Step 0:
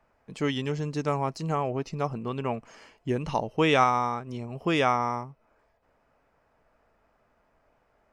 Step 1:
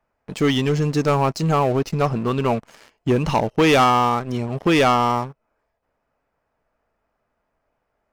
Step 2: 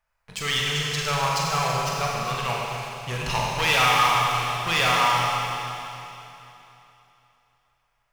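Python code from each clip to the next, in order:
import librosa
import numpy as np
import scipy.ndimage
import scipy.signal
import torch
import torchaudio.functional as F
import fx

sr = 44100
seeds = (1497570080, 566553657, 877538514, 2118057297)

y1 = fx.leveller(x, sr, passes=3)
y2 = fx.tone_stack(y1, sr, knobs='10-0-10')
y2 = np.clip(y2, -10.0 ** (-18.0 / 20.0), 10.0 ** (-18.0 / 20.0))
y2 = fx.rev_schroeder(y2, sr, rt60_s=3.1, comb_ms=32, drr_db=-3.5)
y2 = y2 * librosa.db_to_amplitude(3.0)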